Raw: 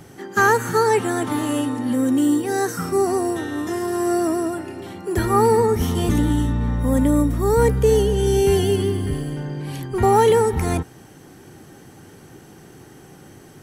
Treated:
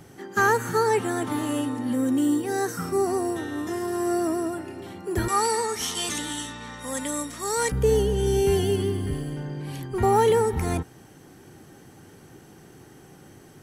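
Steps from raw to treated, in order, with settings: 5.28–7.72 weighting filter ITU-R 468; gain -4.5 dB

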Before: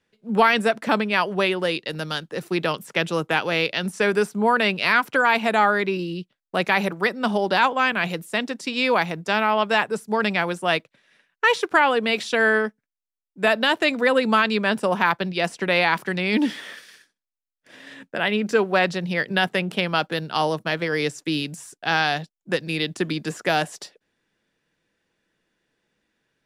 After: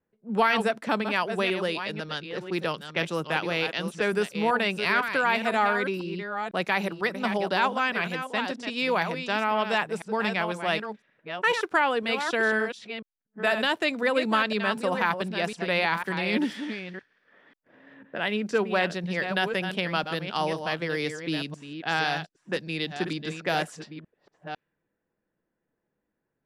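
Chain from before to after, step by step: reverse delay 0.501 s, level -8 dB; low-pass opened by the level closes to 1100 Hz, open at -19.5 dBFS; gain -5.5 dB

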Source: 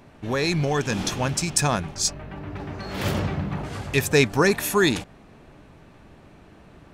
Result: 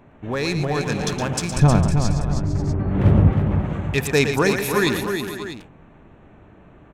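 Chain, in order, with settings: Wiener smoothing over 9 samples; 1.56–3.31 tilt -4 dB/oct; tapped delay 0.115/0.316/0.455/0.54/0.644 s -9/-7/-14.5/-15.5/-13.5 dB

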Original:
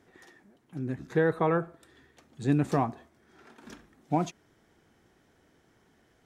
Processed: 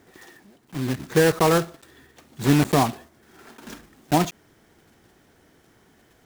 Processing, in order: block floating point 3-bit; gain +7 dB

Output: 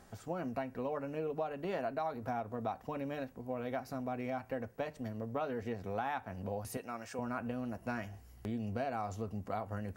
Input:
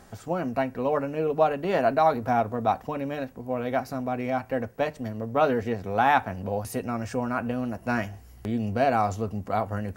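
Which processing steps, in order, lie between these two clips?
6.77–7.19 HPF 650 Hz 6 dB/oct; compressor 6:1, threshold -26 dBFS, peak gain reduction 10.5 dB; gain -7.5 dB

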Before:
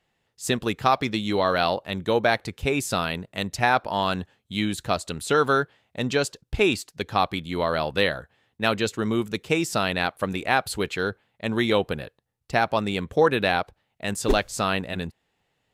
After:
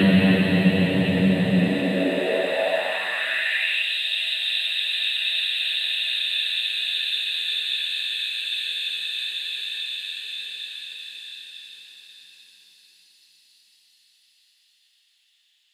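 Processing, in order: Paulstretch 39×, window 0.25 s, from 14.81; high-pass sweep 140 Hz -> 3400 Hz, 1.49–3.99; gain +8.5 dB

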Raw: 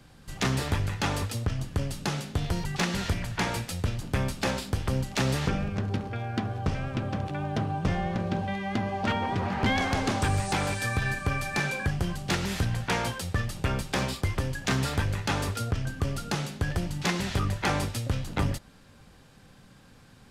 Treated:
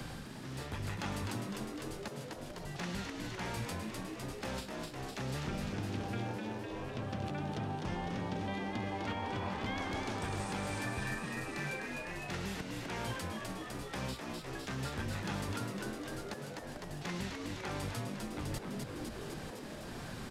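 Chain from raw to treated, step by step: reverse; compressor 16:1, threshold -37 dBFS, peak gain reduction 16.5 dB; reverse; auto swell 0.531 s; frequency-shifting echo 0.253 s, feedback 60%, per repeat +100 Hz, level -5 dB; three-band squash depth 70%; gain +2 dB

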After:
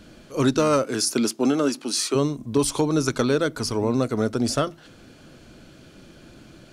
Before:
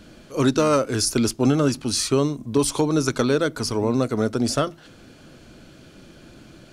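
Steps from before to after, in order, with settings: 0.83–2.14 HPF 140 Hz -> 280 Hz 24 dB/oct; gain -1 dB

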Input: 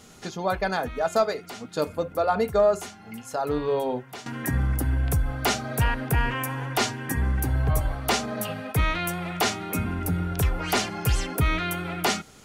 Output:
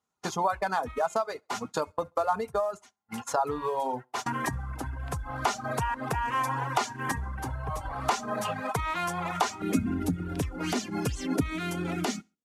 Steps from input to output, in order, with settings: CVSD 64 kbps; HPF 42 Hz 24 dB/oct; compressor 12:1, threshold -31 dBFS, peak gain reduction 15.5 dB; dynamic EQ 6600 Hz, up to +5 dB, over -58 dBFS, Q 1.8; gate -39 dBFS, range -39 dB; bell 1000 Hz +13.5 dB 0.96 oct, from 9.62 s 260 Hz; feedback echo 67 ms, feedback 36%, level -23 dB; reverb removal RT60 0.79 s; gain +1.5 dB

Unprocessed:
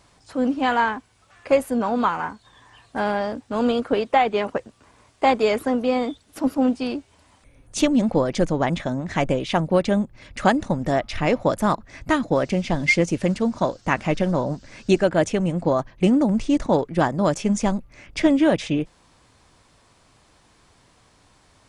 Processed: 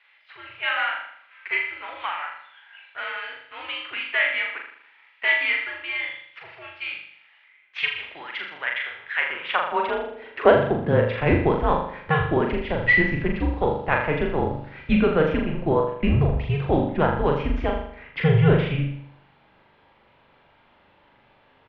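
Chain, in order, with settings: tracing distortion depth 0.03 ms; low shelf 290 Hz -8.5 dB; doubler 43 ms -12 dB; flutter echo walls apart 6.9 m, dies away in 0.65 s; high-pass sweep 2200 Hz -> 93 Hz, 9.1–12.09; mistuned SSB -160 Hz 180–3300 Hz

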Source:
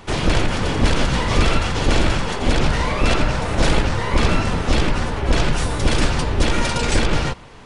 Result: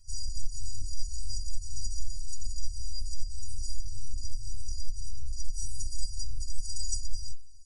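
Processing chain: FFT band-reject 110–4300 Hz; compressor, threshold -19 dBFS, peak gain reduction 9 dB; metallic resonator 290 Hz, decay 0.33 s, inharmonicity 0.03; gain +9 dB

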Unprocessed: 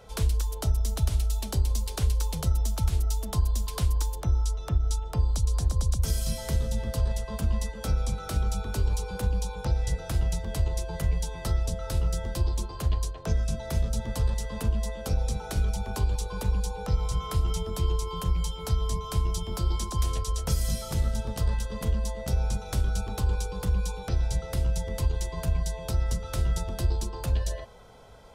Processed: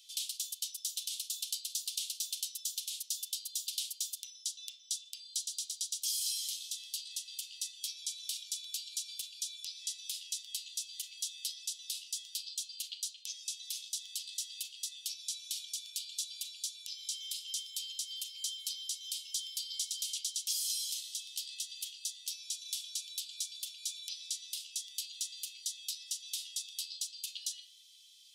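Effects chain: steep high-pass 3000 Hz 48 dB/oct; high shelf 7800 Hz -4.5 dB; in parallel at +1.5 dB: limiter -33 dBFS, peak gain reduction 10 dB; on the sum: reverb RT60 0.45 s, pre-delay 23 ms, DRR 5.5 dB

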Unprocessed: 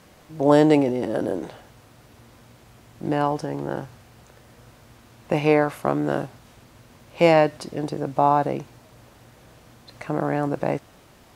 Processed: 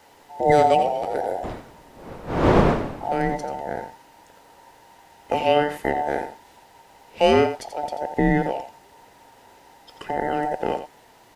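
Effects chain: band inversion scrambler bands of 1000 Hz; 1.43–3.34 wind noise 600 Hz -25 dBFS; echo 86 ms -10 dB; gain -1 dB

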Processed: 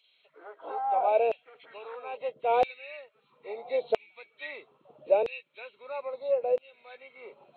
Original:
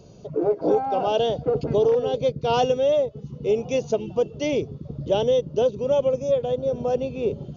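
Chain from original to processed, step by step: nonlinear frequency compression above 1600 Hz 1.5:1; LFO high-pass saw down 0.76 Hz 500–2800 Hz; gain -7.5 dB

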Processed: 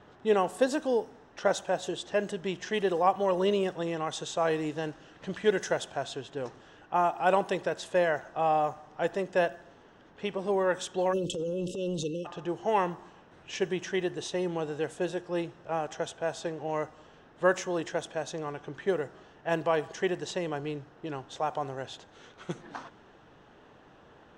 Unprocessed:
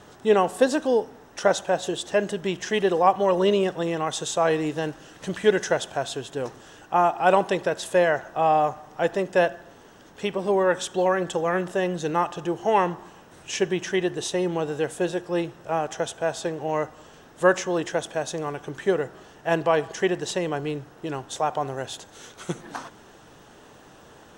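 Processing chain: 11.13–12.26 spectral delete 570–2600 Hz; 11.1–12.04 transient shaper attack -6 dB, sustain +9 dB; low-pass opened by the level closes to 3000 Hz, open at -18.5 dBFS; gain -6 dB

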